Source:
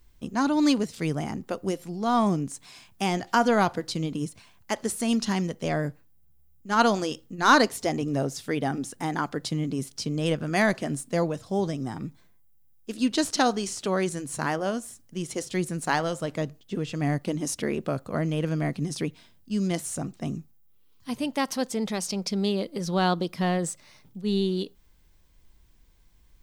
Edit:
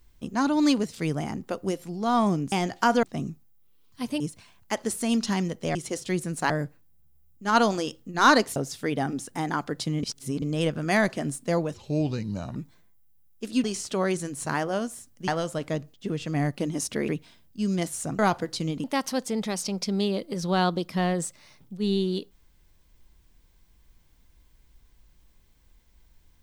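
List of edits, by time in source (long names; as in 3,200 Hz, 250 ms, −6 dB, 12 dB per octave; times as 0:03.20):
0:02.52–0:03.03: remove
0:03.54–0:04.19: swap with 0:20.11–0:21.28
0:07.80–0:08.21: remove
0:09.68–0:10.07: reverse
0:11.39–0:12.02: play speed 77%
0:13.10–0:13.56: remove
0:15.20–0:15.95: move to 0:05.74
0:17.75–0:19.00: remove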